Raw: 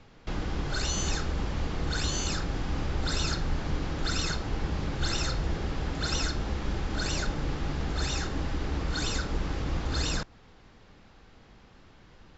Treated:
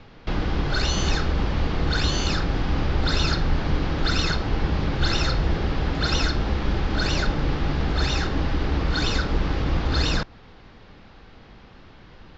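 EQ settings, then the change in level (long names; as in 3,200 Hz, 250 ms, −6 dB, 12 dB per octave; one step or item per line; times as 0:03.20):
low-pass filter 5,100 Hz 24 dB per octave
+7.5 dB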